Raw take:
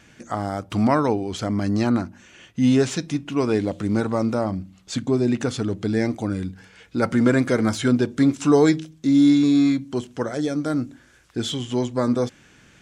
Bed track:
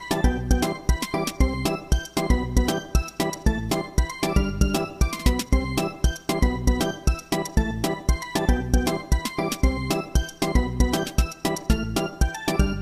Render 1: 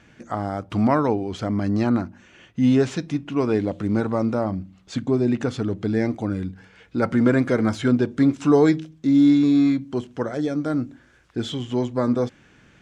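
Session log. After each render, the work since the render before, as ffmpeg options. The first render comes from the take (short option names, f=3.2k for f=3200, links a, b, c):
-af "lowpass=f=2.6k:p=1"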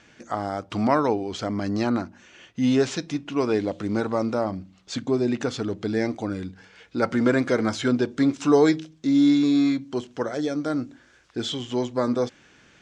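-af "lowpass=5.8k,bass=f=250:g=-7,treble=f=4k:g=10"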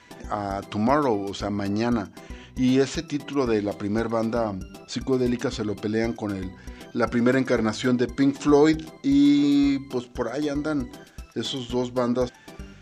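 -filter_complex "[1:a]volume=-19.5dB[a];[0:a][a]amix=inputs=2:normalize=0"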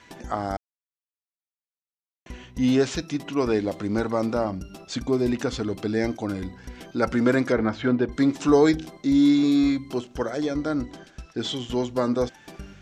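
-filter_complex "[0:a]asettb=1/sr,asplit=3[a][b][c];[a]atrim=end=7.524[d];[b]atrim=start=7.52:end=8.12,asetpts=PTS-STARTPTS,afade=t=in:d=0.004:c=qsin,afade=t=out:st=0.596:d=0.004:c=qsin,lowpass=2.5k[e];[c]atrim=start=8.116[f];[d][e]acrossfade=d=0.004:c1=hsin:c2=qsin[g];[g][f]acrossfade=d=0.004:c1=qsin:c2=hsin,asettb=1/sr,asplit=3[h][i][j];[h]atrim=end=10.414[k];[i]atrim=start=10.41:end=11.49,asetpts=PTS-STARTPTS,afade=t=in:d=0.004:c=qsin,afade=t=out:st=1.076:d=0.004:c=qsin,lowpass=7k[l];[j]atrim=start=11.486[m];[k][l]acrossfade=d=0.004:c1=hsin:c2=qsin[n];[n][m]acrossfade=d=0.004:c1=qsin:c2=hsin,asplit=3[o][p][q];[o]atrim=end=0.57,asetpts=PTS-STARTPTS,afade=t=out:st=0.566:d=0.004:c=hsin[r];[p]atrim=start=0.57:end=2.26,asetpts=PTS-STARTPTS,volume=0[s];[q]atrim=start=2.26,asetpts=PTS-STARTPTS,afade=t=in:d=0.004:c=hsin[t];[r][s][t]concat=n=3:v=0:a=1"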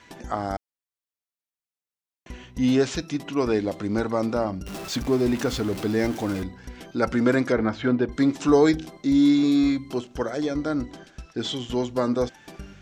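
-filter_complex "[0:a]asettb=1/sr,asplit=3[a][b][c];[a]atrim=end=4.664[d];[b]atrim=start=4.66:end=6.43,asetpts=PTS-STARTPTS,afade=t=in:d=0.004:c=qsin,afade=t=out:st=1.766:d=0.004:c=qsin,aeval=exprs='val(0)+0.5*0.0251*sgn(val(0))':c=same[e];[c]atrim=start=6.426[f];[d][e]acrossfade=d=0.004:c1=hsin:c2=qsin[g];[g][f]acrossfade=d=0.004:c1=qsin:c2=hsin"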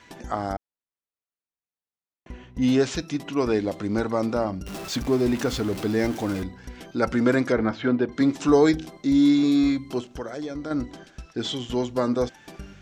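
-filter_complex "[0:a]asettb=1/sr,asplit=3[a][b][c];[a]atrim=end=0.534[d];[b]atrim=start=0.53:end=2.62,asetpts=PTS-STARTPTS,afade=t=in:d=0.004:c=qsin,afade=t=out:st=2.086:d=0.004:c=qsin,highshelf=f=2.7k:g=-12[e];[c]atrim=start=2.616[f];[d][e]acrossfade=d=0.004:c1=hsin:c2=qsin[g];[g][f]acrossfade=d=0.004:c1=qsin:c2=hsin,asettb=1/sr,asplit=3[h][i][j];[h]atrim=end=7.714[k];[i]atrim=start=7.71:end=8.21,asetpts=PTS-STARTPTS,afade=t=in:d=0.004:c=qsin,afade=t=out:st=0.496:d=0.004:c=qsin,highpass=120,lowpass=6.3k[l];[j]atrim=start=8.206[m];[k][l]acrossfade=d=0.004:c1=hsin:c2=qsin[n];[n][m]acrossfade=d=0.004:c1=qsin:c2=hsin,asettb=1/sr,asplit=3[o][p][q];[o]atrim=end=10.114[r];[p]atrim=start=10.11:end=10.71,asetpts=PTS-STARTPTS,afade=t=in:d=0.004:c=qsin,afade=t=out:st=0.596:d=0.004:c=qsin,acompressor=threshold=-33dB:ratio=2:attack=3.2:release=140:knee=1:detection=peak[s];[q]atrim=start=10.706[t];[r][s]acrossfade=d=0.004:c1=hsin:c2=qsin[u];[u][t]acrossfade=d=0.004:c1=qsin:c2=hsin"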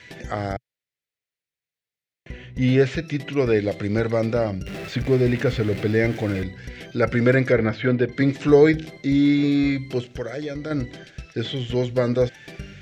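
-filter_complex "[0:a]acrossover=split=2500[a][b];[b]acompressor=threshold=-46dB:ratio=4:attack=1:release=60[c];[a][c]amix=inputs=2:normalize=0,equalizer=f=125:t=o:w=1:g=11,equalizer=f=250:t=o:w=1:g=-4,equalizer=f=500:t=o:w=1:g=7,equalizer=f=1k:t=o:w=1:g=-10,equalizer=f=2k:t=o:w=1:g=11,equalizer=f=4k:t=o:w=1:g=5"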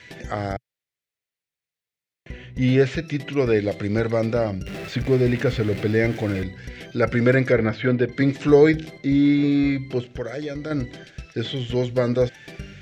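-filter_complex "[0:a]asettb=1/sr,asplit=3[a][b][c];[a]atrim=end=8.984[d];[b]atrim=start=8.98:end=10.25,asetpts=PTS-STARTPTS,afade=t=in:d=0.004:c=qsin,afade=t=out:st=1.266:d=0.004:c=qsin,aemphasis=mode=reproduction:type=cd[e];[c]atrim=start=10.246[f];[d][e]acrossfade=d=0.004:c1=hsin:c2=qsin[g];[g][f]acrossfade=d=0.004:c1=qsin:c2=hsin"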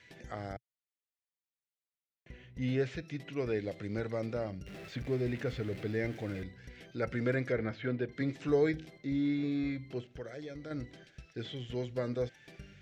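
-af "volume=-14dB"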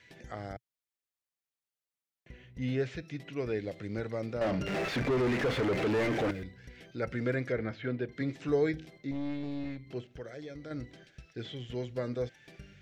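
-filter_complex "[0:a]asettb=1/sr,asplit=3[a][b][c];[a]atrim=end=4.414[d];[b]atrim=start=4.41:end=6.31,asetpts=PTS-STARTPTS,afade=t=in:d=0.004:c=qsin,afade=t=out:st=1.896:d=0.004:c=qsin,asplit=2[e][f];[f]highpass=f=720:p=1,volume=34dB,asoftclip=type=tanh:threshold=-21dB[g];[e][g]amix=inputs=2:normalize=0,lowpass=f=1.3k:p=1,volume=-6dB[h];[c]atrim=start=6.306[i];[d][h]acrossfade=d=0.004:c1=hsin:c2=qsin[j];[j][i]acrossfade=d=0.004:c1=qsin:c2=hsin,asettb=1/sr,asplit=3[k][l][m];[k]atrim=end=9.114[n];[l]atrim=start=9.11:end=9.87,asetpts=PTS-STARTPTS,afade=t=in:d=0.004:c=qsin,afade=t=out:st=0.756:d=0.004:c=qsin,aeval=exprs='(tanh(35.5*val(0)+0.7)-tanh(0.7))/35.5':c=same[o];[m]atrim=start=9.866[p];[n][o]acrossfade=d=0.004:c1=hsin:c2=qsin[q];[q][p]acrossfade=d=0.004:c1=qsin:c2=hsin"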